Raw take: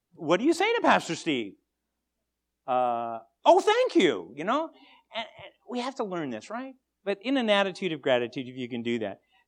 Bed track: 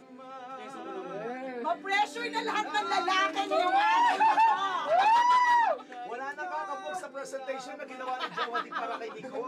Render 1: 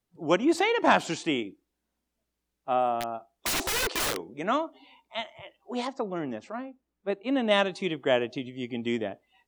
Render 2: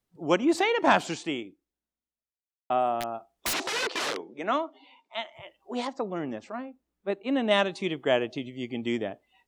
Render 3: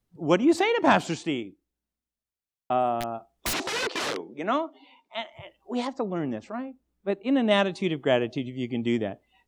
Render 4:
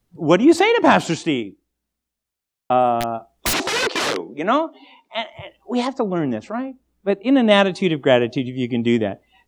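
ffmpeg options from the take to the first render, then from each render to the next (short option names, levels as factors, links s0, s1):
-filter_complex "[0:a]asettb=1/sr,asplit=3[s0][s1][s2];[s0]atrim=end=3.004[s3];[s1]atrim=start=3:end=4.28,asetpts=PTS-STARTPTS,afade=t=in:d=0.004:c=qsin,afade=t=out:st=1.276:d=0.004:c=qsin,aeval=exprs='(mod(14.1*val(0)+1,2)-1)/14.1':c=same[s4];[s2]atrim=start=4.276[s5];[s3][s4]acrossfade=d=0.004:c1=hsin:c2=qsin[s6];[s6][s5]acrossfade=d=0.004:c1=qsin:c2=hsin,asettb=1/sr,asplit=3[s7][s8][s9];[s7]atrim=end=5.874[s10];[s8]atrim=start=5.87:end=7.51,asetpts=PTS-STARTPTS,afade=t=in:d=0.004:c=qsin,afade=t=out:st=1.636:d=0.004:c=qsin,highshelf=f=2600:g=-10[s11];[s9]atrim=start=7.506[s12];[s10][s11]acrossfade=d=0.004:c1=hsin:c2=qsin[s13];[s13][s12]acrossfade=d=0.004:c1=qsin:c2=hsin"
-filter_complex "[0:a]asettb=1/sr,asplit=3[s0][s1][s2];[s0]atrim=end=3.534[s3];[s1]atrim=start=3.53:end=5.33,asetpts=PTS-STARTPTS,afade=t=in:d=0.004:c=qsin,afade=t=out:st=1.796:d=0.004:c=qsin,highpass=250,lowpass=5700[s4];[s2]atrim=start=5.326[s5];[s3][s4]acrossfade=d=0.004:c1=hsin:c2=qsin[s6];[s6][s5]acrossfade=d=0.004:c1=qsin:c2=hsin,asplit=2[s7][s8];[s7]atrim=end=2.7,asetpts=PTS-STARTPTS,afade=t=out:st=0.99:d=1.71:c=qua[s9];[s8]atrim=start=2.7,asetpts=PTS-STARTPTS,afade=t=in:d=0.004:c=hsin[s10];[s9][s10]concat=n=2:v=0:a=1"
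-af "lowshelf=f=230:g=9.5"
-af "volume=2.51,alimiter=limit=0.891:level=0:latency=1"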